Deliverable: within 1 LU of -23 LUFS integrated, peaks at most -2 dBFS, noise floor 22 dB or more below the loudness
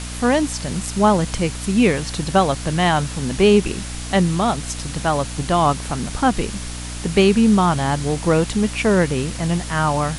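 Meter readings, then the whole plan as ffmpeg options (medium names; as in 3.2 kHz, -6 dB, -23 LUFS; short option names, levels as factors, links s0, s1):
hum 60 Hz; highest harmonic 300 Hz; hum level -28 dBFS; noise floor -30 dBFS; noise floor target -41 dBFS; loudness -19.0 LUFS; peak level -3.0 dBFS; loudness target -23.0 LUFS
-> -af "bandreject=f=60:t=h:w=6,bandreject=f=120:t=h:w=6,bandreject=f=180:t=h:w=6,bandreject=f=240:t=h:w=6,bandreject=f=300:t=h:w=6"
-af "afftdn=nr=11:nf=-30"
-af "volume=0.631"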